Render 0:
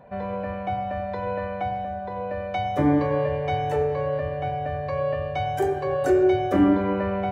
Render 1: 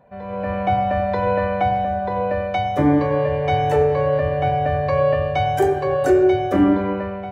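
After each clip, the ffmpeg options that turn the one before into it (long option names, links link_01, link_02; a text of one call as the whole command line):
ffmpeg -i in.wav -af "dynaudnorm=framelen=120:gausssize=7:maxgain=14dB,volume=-4.5dB" out.wav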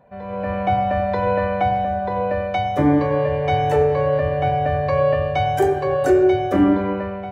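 ffmpeg -i in.wav -af anull out.wav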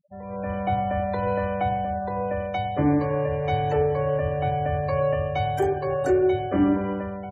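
ffmpeg -i in.wav -af "bass=frequency=250:gain=3,treble=frequency=4000:gain=1,aecho=1:1:282:0.0631,afftfilt=real='re*gte(hypot(re,im),0.0178)':imag='im*gte(hypot(re,im),0.0178)':win_size=1024:overlap=0.75,volume=-6dB" out.wav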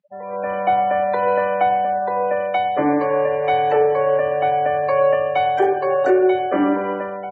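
ffmpeg -i in.wav -af "highpass=420,lowpass=2900,volume=9dB" out.wav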